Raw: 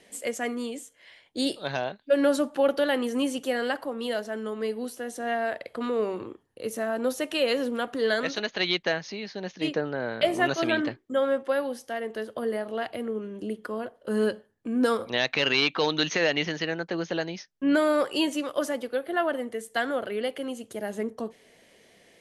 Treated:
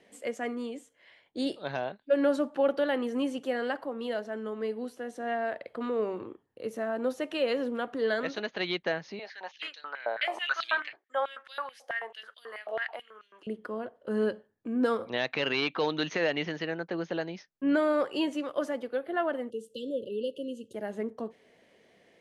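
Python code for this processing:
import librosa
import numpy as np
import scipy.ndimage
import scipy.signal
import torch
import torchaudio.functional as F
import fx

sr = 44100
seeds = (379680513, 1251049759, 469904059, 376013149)

y = fx.filter_held_highpass(x, sr, hz=9.2, low_hz=680.0, high_hz=3800.0, at=(9.19, 13.47))
y = fx.brickwall_bandstop(y, sr, low_hz=590.0, high_hz=2600.0, at=(19.5, 20.74))
y = fx.lowpass(y, sr, hz=2100.0, slope=6)
y = fx.low_shelf(y, sr, hz=65.0, db=-10.5)
y = F.gain(torch.from_numpy(y), -2.5).numpy()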